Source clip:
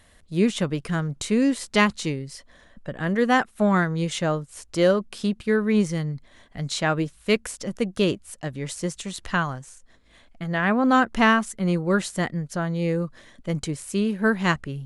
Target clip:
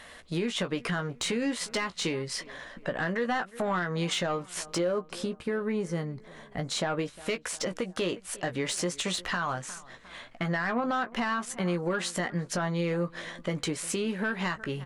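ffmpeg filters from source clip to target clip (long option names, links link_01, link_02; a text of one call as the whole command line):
ffmpeg -i in.wav -filter_complex "[0:a]asettb=1/sr,asplit=3[link_01][link_02][link_03];[link_01]atrim=end=4.784[link_04];[link_02]atrim=start=4.78:end=6.99,asetpts=PTS-STARTPTS,afade=type=in:duration=0.004:curve=qsin,afade=type=out:start_time=2.206:duration=0.004:curve=qsin,equalizer=frequency=3300:width_type=o:width=2.9:gain=-10[link_05];[link_03]atrim=start=6.986[link_06];[link_04][link_05]acrossfade=duration=0.004:curve1=hsin:curve2=qsin[link_07];[link_07][link_06]acrossfade=duration=0.004:curve1=qsin:curve2=hsin,acompressor=threshold=-30dB:ratio=6,highshelf=frequency=4200:gain=-5,asplit=2[link_08][link_09];[link_09]adelay=356,lowpass=frequency=2300:poles=1,volume=-23.5dB,asplit=2[link_10][link_11];[link_11]adelay=356,lowpass=frequency=2300:poles=1,volume=0.53,asplit=2[link_12][link_13];[link_13]adelay=356,lowpass=frequency=2300:poles=1,volume=0.53[link_14];[link_08][link_10][link_12][link_14]amix=inputs=4:normalize=0,asplit=2[link_15][link_16];[link_16]highpass=frequency=720:poles=1,volume=18dB,asoftclip=type=tanh:threshold=-13dB[link_17];[link_15][link_17]amix=inputs=2:normalize=0,lowpass=frequency=5600:poles=1,volume=-6dB,asplit=2[link_18][link_19];[link_19]adelay=17,volume=-8dB[link_20];[link_18][link_20]amix=inputs=2:normalize=0,alimiter=limit=-21.5dB:level=0:latency=1:release=70" out.wav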